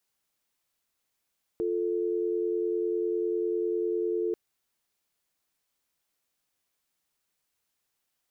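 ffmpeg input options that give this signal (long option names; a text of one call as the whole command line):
ffmpeg -f lavfi -i "aevalsrc='0.0376*(sin(2*PI*350*t)+sin(2*PI*440*t))':duration=2.74:sample_rate=44100" out.wav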